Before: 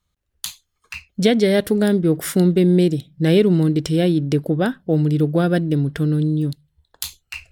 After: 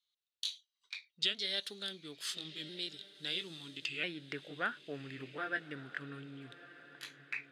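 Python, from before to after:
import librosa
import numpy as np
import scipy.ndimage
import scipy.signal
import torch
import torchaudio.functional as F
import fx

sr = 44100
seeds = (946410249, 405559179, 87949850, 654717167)

y = fx.pitch_ramps(x, sr, semitones=-2.5, every_ms=1345)
y = fx.filter_sweep_bandpass(y, sr, from_hz=3800.0, to_hz=1800.0, start_s=3.61, end_s=4.26, q=3.4)
y = fx.echo_diffused(y, sr, ms=1241, feedback_pct=40, wet_db=-16)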